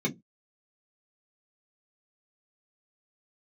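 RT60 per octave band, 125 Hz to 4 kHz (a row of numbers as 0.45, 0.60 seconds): 0.30, 0.25, 0.20, 0.15, 0.10, 0.10 seconds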